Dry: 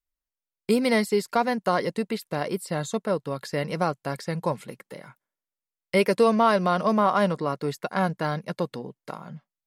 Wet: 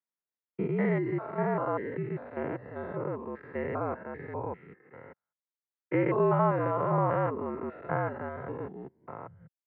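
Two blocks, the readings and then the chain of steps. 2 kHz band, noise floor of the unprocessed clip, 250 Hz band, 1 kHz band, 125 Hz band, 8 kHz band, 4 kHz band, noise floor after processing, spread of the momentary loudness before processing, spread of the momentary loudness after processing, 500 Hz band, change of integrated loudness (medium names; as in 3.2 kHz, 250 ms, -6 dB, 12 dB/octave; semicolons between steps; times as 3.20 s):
-8.5 dB, under -85 dBFS, -6.5 dB, -6.5 dB, -1.5 dB, under -40 dB, under -25 dB, under -85 dBFS, 18 LU, 19 LU, -5.5 dB, -6.0 dB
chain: spectrogram pixelated in time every 200 ms; reverb removal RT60 0.53 s; mistuned SSB -59 Hz 200–2200 Hz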